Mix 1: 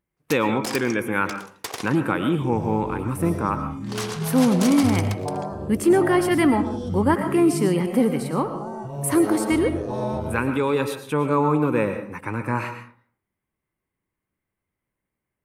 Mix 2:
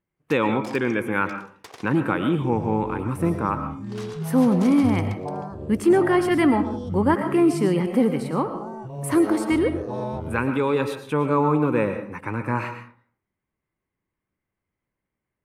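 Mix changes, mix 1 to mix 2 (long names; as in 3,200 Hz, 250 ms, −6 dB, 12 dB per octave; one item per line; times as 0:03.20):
first sound −9.5 dB
second sound: send −9.5 dB
master: add high-shelf EQ 6,700 Hz −10 dB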